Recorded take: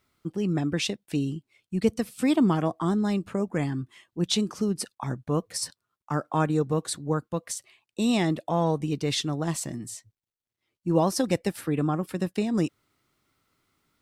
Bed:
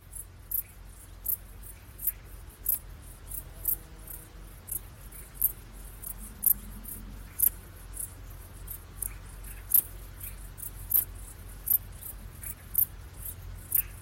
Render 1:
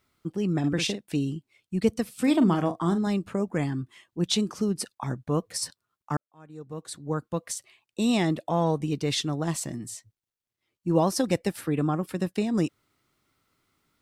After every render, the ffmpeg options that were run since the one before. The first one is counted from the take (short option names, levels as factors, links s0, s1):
-filter_complex "[0:a]asettb=1/sr,asplit=3[s0][s1][s2];[s0]atrim=end=0.594[s3];[s1]atrim=start=0.59:end=1.07,asetpts=PTS-STARTPTS,afade=t=in:d=0.004:c=qsin,afade=t=out:st=0.476:d=0.004:c=qsin,asplit=2[s4][s5];[s5]adelay=49,volume=0.447[s6];[s4][s6]amix=inputs=2:normalize=0,atrim=end_sample=21168[s7];[s2]atrim=start=1.066[s8];[s3][s7]acrossfade=d=0.004:c1=hsin:c2=qsin[s9];[s9][s8]acrossfade=d=0.004:c1=qsin:c2=hsin,asettb=1/sr,asplit=3[s10][s11][s12];[s10]atrim=end=2.204[s13];[s11]atrim=start=2.2:end=3.07,asetpts=PTS-STARTPTS,afade=t=in:d=0.004:c=qsin,afade=t=out:st=0.866:d=0.004:c=qsin,asplit=2[s14][s15];[s15]adelay=41,volume=0.316[s16];[s14][s16]amix=inputs=2:normalize=0,atrim=end_sample=38367[s17];[s12]atrim=start=3.066[s18];[s13][s17]acrossfade=d=0.004:c1=hsin:c2=qsin[s19];[s19][s18]acrossfade=d=0.004:c1=qsin:c2=hsin,asplit=2[s20][s21];[s20]atrim=end=6.17,asetpts=PTS-STARTPTS,afade=t=out:st=6.166:d=0.004:c=hsin[s22];[s21]atrim=start=6.17,asetpts=PTS-STARTPTS,afade=t=in:d=1.12:c=qua[s23];[s22][s23]concat=n=2:v=0:a=1"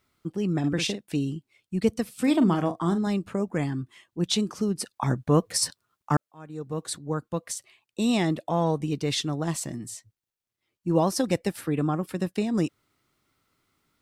-filter_complex "[0:a]asplit=3[s0][s1][s2];[s0]afade=t=out:st=4.93:d=0.02[s3];[s1]acontrast=47,afade=t=in:st=4.93:d=0.02,afade=t=out:st=6.97:d=0.02[s4];[s2]afade=t=in:st=6.97:d=0.02[s5];[s3][s4][s5]amix=inputs=3:normalize=0"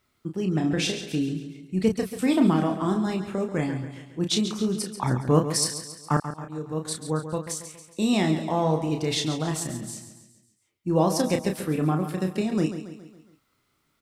-filter_complex "[0:a]asplit=2[s0][s1];[s1]adelay=32,volume=0.501[s2];[s0][s2]amix=inputs=2:normalize=0,aecho=1:1:138|276|414|552|690:0.299|0.149|0.0746|0.0373|0.0187"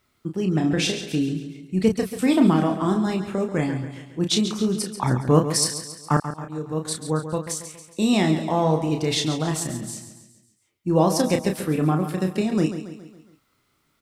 -af "volume=1.41"